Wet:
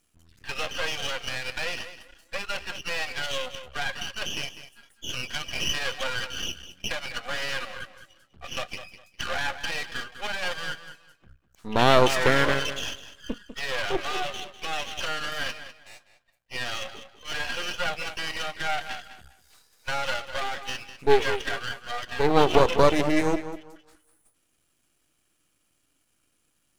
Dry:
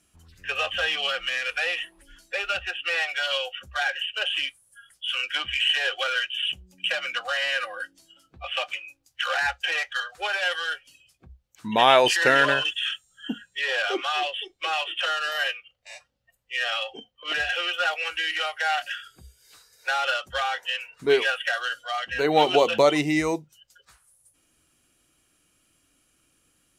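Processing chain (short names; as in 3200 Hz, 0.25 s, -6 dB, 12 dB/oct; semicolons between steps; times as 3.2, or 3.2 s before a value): dynamic EQ 410 Hz, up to +7 dB, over -37 dBFS, Q 0.96; tape echo 0.201 s, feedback 26%, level -10.5 dB, low-pass 3300 Hz; half-wave rectifier; gain -1 dB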